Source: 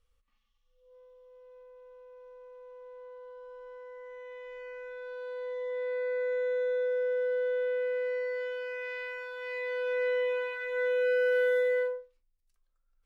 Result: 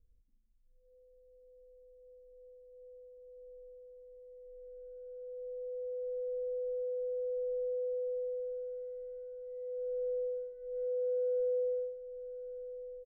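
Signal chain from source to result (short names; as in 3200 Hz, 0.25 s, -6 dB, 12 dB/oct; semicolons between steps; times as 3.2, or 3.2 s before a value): inverse Chebyshev low-pass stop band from 980 Hz, stop band 50 dB; echo 1.138 s -11.5 dB; gain +5 dB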